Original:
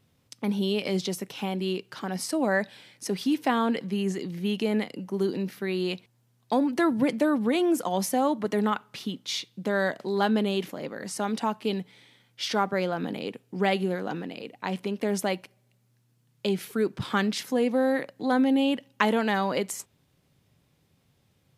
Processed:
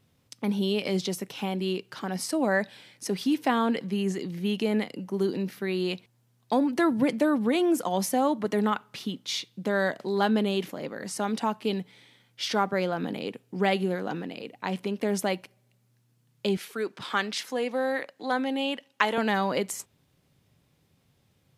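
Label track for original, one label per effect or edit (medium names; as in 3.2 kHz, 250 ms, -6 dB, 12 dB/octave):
16.570000	19.180000	frequency weighting A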